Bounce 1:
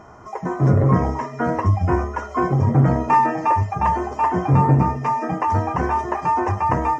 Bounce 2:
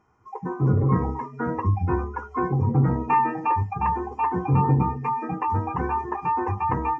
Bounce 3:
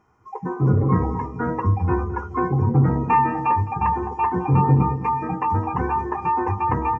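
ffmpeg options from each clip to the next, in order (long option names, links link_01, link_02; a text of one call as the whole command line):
ffmpeg -i in.wav -af "superequalizer=8b=0.316:12b=1.78,afftdn=noise_reduction=16:noise_floor=-28,volume=-4.5dB" out.wav
ffmpeg -i in.wav -filter_complex "[0:a]asplit=2[link_01][link_02];[link_02]adelay=212,lowpass=frequency=810:poles=1,volume=-11dB,asplit=2[link_03][link_04];[link_04]adelay=212,lowpass=frequency=810:poles=1,volume=0.48,asplit=2[link_05][link_06];[link_06]adelay=212,lowpass=frequency=810:poles=1,volume=0.48,asplit=2[link_07][link_08];[link_08]adelay=212,lowpass=frequency=810:poles=1,volume=0.48,asplit=2[link_09][link_10];[link_10]adelay=212,lowpass=frequency=810:poles=1,volume=0.48[link_11];[link_01][link_03][link_05][link_07][link_09][link_11]amix=inputs=6:normalize=0,volume=2.5dB" out.wav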